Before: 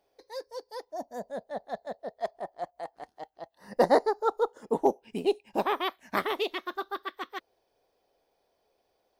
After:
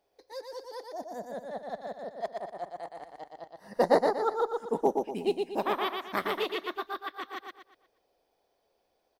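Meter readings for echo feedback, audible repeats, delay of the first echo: 37%, 4, 0.119 s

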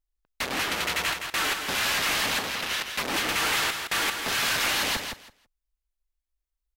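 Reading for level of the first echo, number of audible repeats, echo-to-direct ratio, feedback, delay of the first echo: -6.5 dB, 2, -6.5 dB, 17%, 0.165 s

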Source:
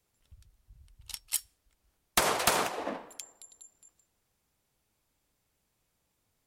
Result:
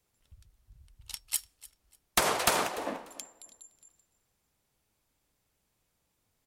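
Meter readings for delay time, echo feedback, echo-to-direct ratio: 0.295 s, 24%, -20.0 dB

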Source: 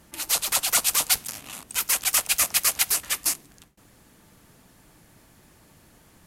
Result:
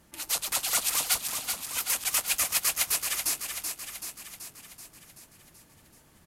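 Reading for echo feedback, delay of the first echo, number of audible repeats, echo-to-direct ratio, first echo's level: 60%, 0.381 s, 7, -4.0 dB, -6.0 dB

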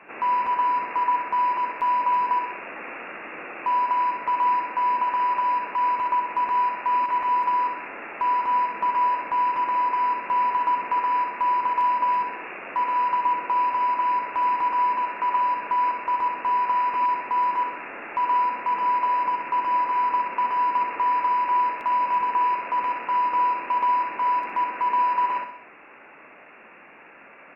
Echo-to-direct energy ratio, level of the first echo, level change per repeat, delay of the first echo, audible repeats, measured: -6.0 dB, -7.0 dB, -6.5 dB, 63 ms, 4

